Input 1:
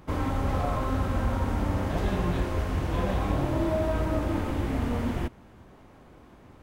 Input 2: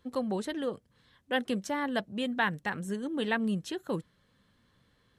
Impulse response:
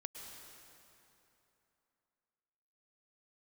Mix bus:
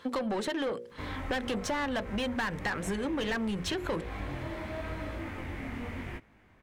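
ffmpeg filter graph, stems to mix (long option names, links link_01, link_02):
-filter_complex "[0:a]equalizer=frequency=2100:width=1.7:gain=12.5,flanger=delay=18.5:depth=7.6:speed=0.93,adelay=900,volume=-8dB[link_01];[1:a]bandreject=frequency=60:width_type=h:width=6,bandreject=frequency=120:width_type=h:width=6,bandreject=frequency=180:width_type=h:width=6,bandreject=frequency=240:width_type=h:width=6,bandreject=frequency=300:width_type=h:width=6,bandreject=frequency=360:width_type=h:width=6,bandreject=frequency=420:width_type=h:width=6,bandreject=frequency=480:width_type=h:width=6,bandreject=frequency=540:width_type=h:width=6,asplit=2[link_02][link_03];[link_03]highpass=frequency=720:poles=1,volume=27dB,asoftclip=type=tanh:threshold=-13.5dB[link_04];[link_02][link_04]amix=inputs=2:normalize=0,lowpass=frequency=2800:poles=1,volume=-6dB,volume=-0.5dB[link_05];[link_01][link_05]amix=inputs=2:normalize=0,acompressor=threshold=-30dB:ratio=6"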